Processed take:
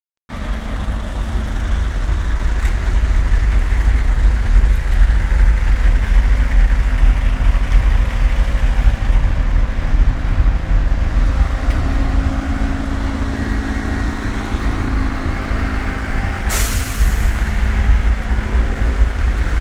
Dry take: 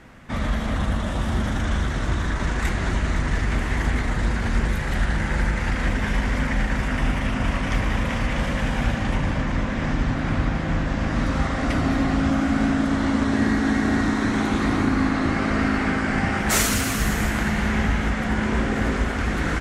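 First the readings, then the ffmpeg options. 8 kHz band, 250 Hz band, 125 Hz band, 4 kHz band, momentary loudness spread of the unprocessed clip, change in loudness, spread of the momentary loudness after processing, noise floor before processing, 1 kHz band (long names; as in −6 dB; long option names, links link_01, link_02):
0.0 dB, −3.5 dB, +7.0 dB, +0.5 dB, 4 LU, +5.0 dB, 5 LU, −26 dBFS, −0.5 dB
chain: -af "aeval=exprs='sgn(val(0))*max(abs(val(0))-0.015,0)':channel_layout=same,asubboost=boost=6:cutoff=74,volume=1dB"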